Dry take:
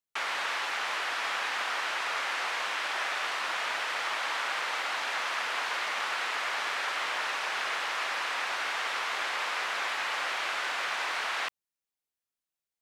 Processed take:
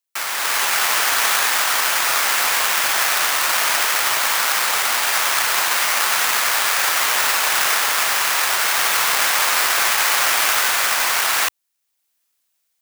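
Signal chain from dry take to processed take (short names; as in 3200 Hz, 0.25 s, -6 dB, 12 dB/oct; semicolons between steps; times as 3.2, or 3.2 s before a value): half-waves squared off; tilt +2.5 dB/oct; AGC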